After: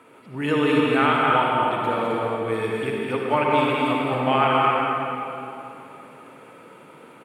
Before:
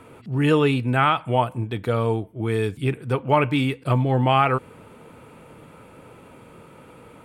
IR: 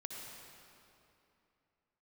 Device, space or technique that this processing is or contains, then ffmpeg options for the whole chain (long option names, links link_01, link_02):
stadium PA: -filter_complex "[0:a]highpass=210,equalizer=frequency=1600:width_type=o:width=2:gain=3.5,aecho=1:1:207|265.3:0.562|0.501[link_01];[1:a]atrim=start_sample=2205[link_02];[link_01][link_02]afir=irnorm=-1:irlink=0"